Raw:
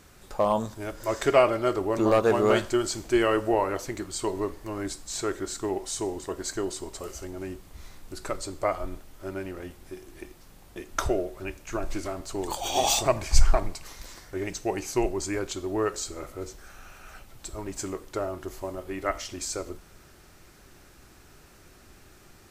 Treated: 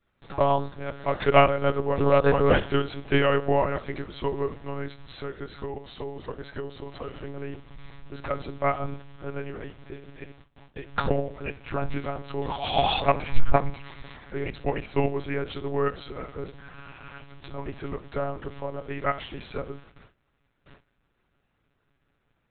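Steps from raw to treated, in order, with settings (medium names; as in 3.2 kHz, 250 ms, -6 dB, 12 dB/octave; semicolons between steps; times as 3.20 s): gate with hold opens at -40 dBFS; peaking EQ 270 Hz -2.5 dB 1 oct; 4.83–6.92 s: compression, threshold -33 dBFS, peak gain reduction 8.5 dB; monotone LPC vocoder at 8 kHz 140 Hz; trim +2.5 dB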